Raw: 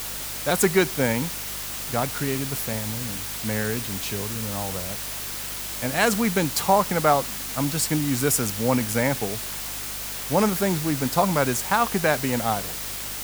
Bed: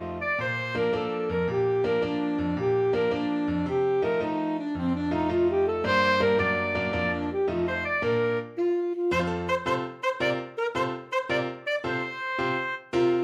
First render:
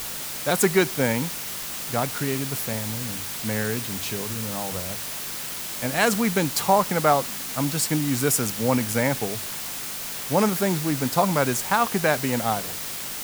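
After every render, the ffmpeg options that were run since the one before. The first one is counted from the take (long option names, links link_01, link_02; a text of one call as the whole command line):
ffmpeg -i in.wav -af "bandreject=frequency=50:width_type=h:width=4,bandreject=frequency=100:width_type=h:width=4" out.wav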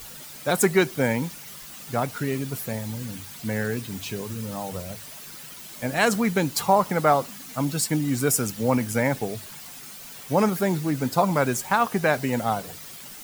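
ffmpeg -i in.wav -af "afftdn=noise_reduction=11:noise_floor=-33" out.wav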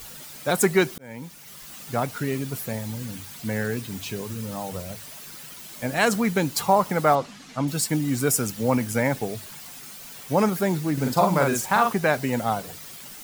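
ffmpeg -i in.wav -filter_complex "[0:a]asettb=1/sr,asplit=3[link_01][link_02][link_03];[link_01]atrim=end=7.154[link_04];[link_02]atrim=start=7.15:end=7.68,asetpts=PTS-STARTPTS,afade=type=in:duration=0.004:curve=qsin,afade=type=out:start_time=0.526:duration=0.004:curve=qsin,lowpass=5400[link_05];[link_03]atrim=start=7.676[link_06];[link_04][link_05]acrossfade=duration=0.004:curve1=hsin:curve2=qsin[link_07];[link_07][link_06]acrossfade=duration=0.004:curve1=qsin:curve2=hsin,asettb=1/sr,asplit=3[link_08][link_09][link_10];[link_08]atrim=end=10.934[link_11];[link_09]atrim=start=10.93:end=11.93,asetpts=PTS-STARTPTS,afade=type=in:duration=0.004:curve=qsin,afade=type=out:start_time=0.996:duration=0.004:curve=qsin,asplit=2[link_12][link_13];[link_13]adelay=44,volume=-3.5dB[link_14];[link_12][link_14]amix=inputs=2:normalize=0,atrim=end_sample=44100[link_15];[link_10]atrim=start=11.926[link_16];[link_11][link_15]acrossfade=duration=0.004:curve1=hsin:curve2=qsin[link_17];[link_17][link_16]acrossfade=duration=0.004:curve1=qsin:curve2=hsin,asplit=2[link_18][link_19];[link_18]atrim=end=0.98,asetpts=PTS-STARTPTS,afade=type=out:start_time=0.976:duration=0.004:curve=hsin[link_20];[link_19]atrim=start=0.98,asetpts=PTS-STARTPTS,afade=type=in:duration=0.74[link_21];[link_20][link_21]concat=n=2:v=0:a=1" out.wav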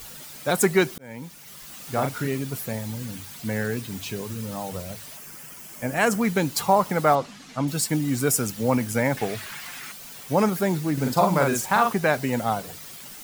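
ffmpeg -i in.wav -filter_complex "[0:a]asettb=1/sr,asplit=3[link_01][link_02][link_03];[link_01]atrim=end=1.804[link_04];[link_02]atrim=start=1.8:end=2.27,asetpts=PTS-STARTPTS,afade=type=in:duration=0.004:curve=qsin,afade=type=out:start_time=0.466:duration=0.004:curve=qsin,asplit=2[link_05][link_06];[link_06]adelay=37,volume=-5.5dB[link_07];[link_05][link_07]amix=inputs=2:normalize=0,atrim=end_sample=20727[link_08];[link_03]atrim=start=2.266[link_09];[link_04][link_08]acrossfade=duration=0.004:curve1=hsin:curve2=qsin[link_10];[link_10][link_09]acrossfade=duration=0.004:curve1=qsin:curve2=hsin,asettb=1/sr,asplit=3[link_11][link_12][link_13];[link_11]atrim=end=5.174[link_14];[link_12]atrim=start=5.17:end=6.21,asetpts=PTS-STARTPTS,afade=type=in:duration=0.004:curve=qsin,afade=type=out:start_time=1.036:duration=0.004:curve=qsin,equalizer=frequency=3900:width=2.9:gain=-11.5[link_15];[link_13]atrim=start=6.206[link_16];[link_14][link_15]acrossfade=duration=0.004:curve1=hsin:curve2=qsin[link_17];[link_17][link_16]acrossfade=duration=0.004:curve1=qsin:curve2=hsin,asettb=1/sr,asplit=3[link_18][link_19][link_20];[link_18]atrim=end=9.174[link_21];[link_19]atrim=start=9.17:end=9.92,asetpts=PTS-STARTPTS,afade=type=in:duration=0.004:curve=qsin,afade=type=out:start_time=0.746:duration=0.004:curve=qsin,equalizer=frequency=1800:width_type=o:width=1.8:gain=12.5[link_22];[link_20]atrim=start=9.916[link_23];[link_21][link_22]acrossfade=duration=0.004:curve1=hsin:curve2=qsin[link_24];[link_24][link_23]acrossfade=duration=0.004:curve1=qsin:curve2=hsin" out.wav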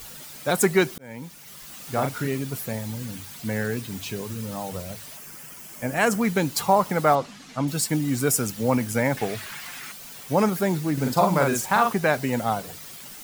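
ffmpeg -i in.wav -af anull out.wav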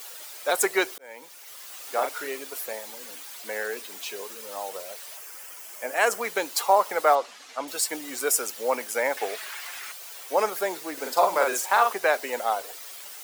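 ffmpeg -i in.wav -af "highpass=frequency=430:width=0.5412,highpass=frequency=430:width=1.3066" out.wav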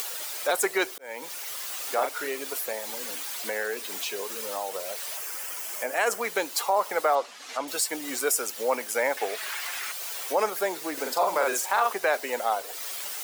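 ffmpeg -i in.wav -af "acompressor=mode=upward:threshold=-26dB:ratio=2.5,alimiter=limit=-13.5dB:level=0:latency=1:release=40" out.wav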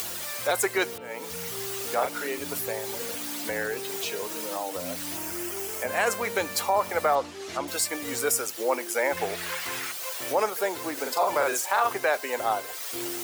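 ffmpeg -i in.wav -i bed.wav -filter_complex "[1:a]volume=-14dB[link_01];[0:a][link_01]amix=inputs=2:normalize=0" out.wav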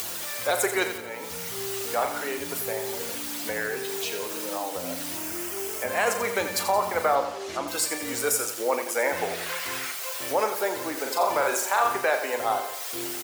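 ffmpeg -i in.wav -filter_complex "[0:a]asplit=2[link_01][link_02];[link_02]adelay=38,volume=-11dB[link_03];[link_01][link_03]amix=inputs=2:normalize=0,aecho=1:1:87|174|261|348|435|522:0.335|0.167|0.0837|0.0419|0.0209|0.0105" out.wav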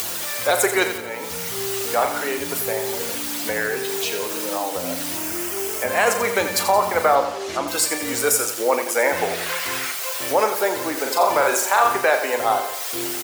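ffmpeg -i in.wav -af "volume=6dB" out.wav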